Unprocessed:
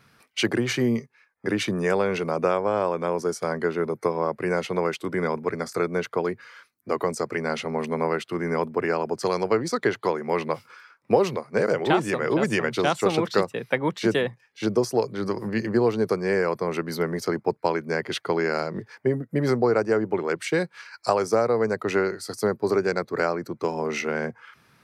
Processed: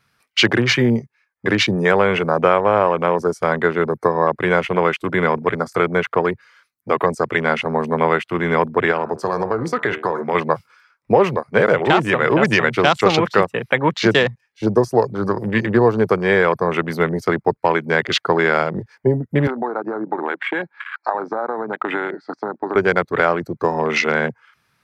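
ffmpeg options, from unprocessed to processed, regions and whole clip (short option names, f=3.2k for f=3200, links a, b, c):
-filter_complex "[0:a]asettb=1/sr,asplit=3[a][b][c];[a]atrim=end=8.914[d];[b]atrim=start=8.91:end=10.35,asetpts=PTS-STARTPTS,afade=t=in:d=0.004:c=qsin,afade=t=out:st=1.436:d=0.004:c=qsin,bandreject=f=76.94:t=h:w=4,bandreject=f=153.88:t=h:w=4,bandreject=f=230.82:t=h:w=4,bandreject=f=307.76:t=h:w=4,bandreject=f=384.7:t=h:w=4,bandreject=f=461.64:t=h:w=4,bandreject=f=538.58:t=h:w=4,bandreject=f=615.52:t=h:w=4,bandreject=f=692.46:t=h:w=4,bandreject=f=769.4:t=h:w=4,bandreject=f=846.34:t=h:w=4,bandreject=f=923.28:t=h:w=4,bandreject=f=1.00022k:t=h:w=4,bandreject=f=1.07716k:t=h:w=4,bandreject=f=1.1541k:t=h:w=4,bandreject=f=1.23104k:t=h:w=4,bandreject=f=1.30798k:t=h:w=4,bandreject=f=1.38492k:t=h:w=4,bandreject=f=1.46186k:t=h:w=4,bandreject=f=1.5388k:t=h:w=4,bandreject=f=1.61574k:t=h:w=4,bandreject=f=1.69268k:t=h:w=4,bandreject=f=1.76962k:t=h:w=4,bandreject=f=1.84656k:t=h:w=4,bandreject=f=1.9235k:t=h:w=4,bandreject=f=2.00044k:t=h:w=4,bandreject=f=2.07738k:t=h:w=4,bandreject=f=2.15432k:t=h:w=4,bandreject=f=2.23126k:t=h:w=4,bandreject=f=2.3082k:t=h:w=4,bandreject=f=2.38514k:t=h:w=4,bandreject=f=2.46208k:t=h:w=4,bandreject=f=2.53902k:t=h:w=4,acompressor=threshold=-23dB:ratio=4:attack=3.2:release=140:knee=1:detection=peak[e];[c]atrim=start=10.346[f];[d][e]acrossfade=d=0.004:c1=hsin:c2=qsin[g];[g][f]acrossfade=d=0.004:c1=qsin:c2=hsin,asettb=1/sr,asplit=3[h][i][j];[h]atrim=end=19.474[k];[i]atrim=start=19.47:end=22.76,asetpts=PTS-STARTPTS,afade=t=in:d=0.004:c=qsin,afade=t=out:st=3.286:d=0.004:c=qsin,acompressor=threshold=-27dB:ratio=10:attack=3.2:release=140:knee=1:detection=peak,highpass=f=210:w=0.5412,highpass=f=210:w=1.3066,equalizer=f=290:t=q:w=4:g=8,equalizer=f=470:t=q:w=4:g=-4,equalizer=f=840:t=q:w=4:g=9,equalizer=f=1.6k:t=q:w=4:g=5,equalizer=f=3k:t=q:w=4:g=-10,lowpass=f=3.4k:w=0.5412,lowpass=f=3.4k:w=1.3066[l];[j]atrim=start=22.756[m];[k][l]acrossfade=d=0.004:c1=hsin:c2=qsin[n];[n][m]acrossfade=d=0.004:c1=qsin:c2=hsin,equalizer=f=300:w=0.54:g=-7,afwtdn=0.0141,alimiter=level_in=13.5dB:limit=-1dB:release=50:level=0:latency=1,volume=-1dB"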